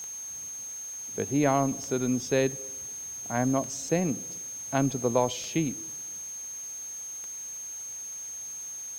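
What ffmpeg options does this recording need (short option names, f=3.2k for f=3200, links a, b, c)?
-af "adeclick=t=4,bandreject=f=6.4k:w=30,afwtdn=0.0025"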